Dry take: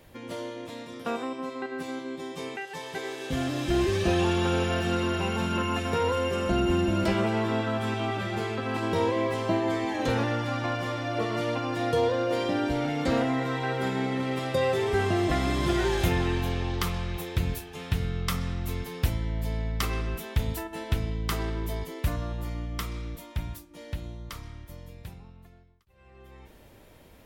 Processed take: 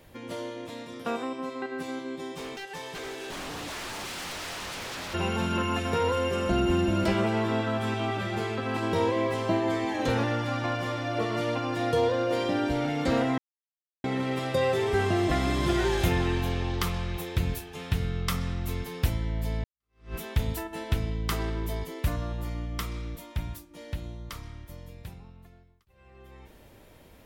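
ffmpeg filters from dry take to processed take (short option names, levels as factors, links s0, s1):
-filter_complex "[0:a]asplit=3[s0][s1][s2];[s0]afade=t=out:st=2.35:d=0.02[s3];[s1]aeval=exprs='0.0251*(abs(mod(val(0)/0.0251+3,4)-2)-1)':c=same,afade=t=in:st=2.35:d=0.02,afade=t=out:st=5.13:d=0.02[s4];[s2]afade=t=in:st=5.13:d=0.02[s5];[s3][s4][s5]amix=inputs=3:normalize=0,asplit=4[s6][s7][s8][s9];[s6]atrim=end=13.38,asetpts=PTS-STARTPTS,afade=t=out:st=13.376:d=0.004:c=hsin[s10];[s7]atrim=start=13.38:end=14.04,asetpts=PTS-STARTPTS,volume=0[s11];[s8]atrim=start=14.04:end=19.64,asetpts=PTS-STARTPTS,afade=t=in:d=0.004:c=hsin,afade=t=out:st=5.596:d=0.004:c=hsin[s12];[s9]atrim=start=19.64,asetpts=PTS-STARTPTS,afade=t=in:d=0.51:c=exp[s13];[s10][s11][s12][s13]concat=n=4:v=0:a=1"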